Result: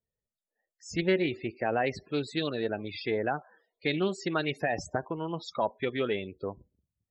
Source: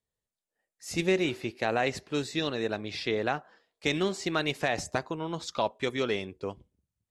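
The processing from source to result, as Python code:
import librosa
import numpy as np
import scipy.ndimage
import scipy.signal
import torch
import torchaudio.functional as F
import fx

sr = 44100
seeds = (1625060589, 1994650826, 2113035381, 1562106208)

y = fx.spec_topn(x, sr, count=32)
y = fx.doppler_dist(y, sr, depth_ms=0.12)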